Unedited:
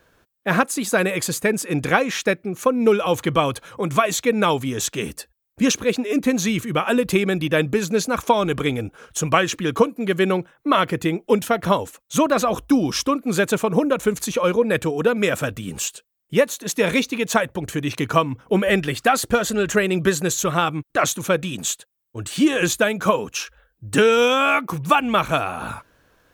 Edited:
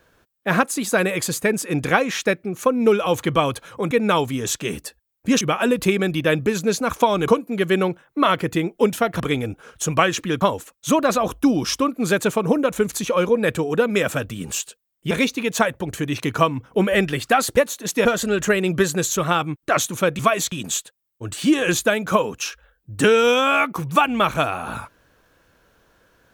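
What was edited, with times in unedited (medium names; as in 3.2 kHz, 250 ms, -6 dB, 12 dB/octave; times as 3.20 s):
3.91–4.24 s: move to 21.46 s
5.74–6.68 s: delete
8.55–9.77 s: move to 11.69 s
16.38–16.86 s: move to 19.32 s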